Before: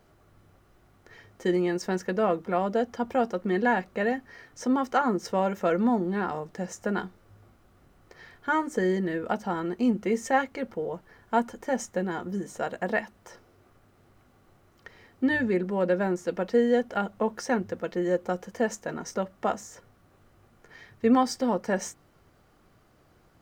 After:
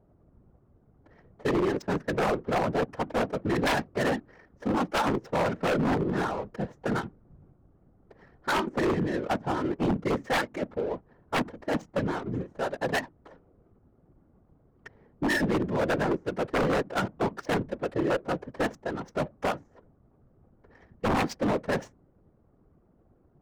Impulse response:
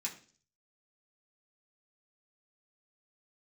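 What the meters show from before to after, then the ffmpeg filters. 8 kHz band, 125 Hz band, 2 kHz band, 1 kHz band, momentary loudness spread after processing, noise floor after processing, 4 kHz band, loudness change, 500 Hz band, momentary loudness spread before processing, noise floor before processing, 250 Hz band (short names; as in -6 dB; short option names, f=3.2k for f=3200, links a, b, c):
-4.0 dB, +3.5 dB, +0.5 dB, -1.5 dB, 7 LU, -64 dBFS, +5.0 dB, -1.0 dB, -1.5 dB, 9 LU, -62 dBFS, -2.0 dB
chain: -af "adynamicsmooth=sensitivity=7.5:basefreq=520,afftfilt=real='hypot(re,im)*cos(2*PI*random(0))':imag='hypot(re,im)*sin(2*PI*random(1))':win_size=512:overlap=0.75,aeval=exprs='0.0473*(abs(mod(val(0)/0.0473+3,4)-2)-1)':c=same,volume=7dB"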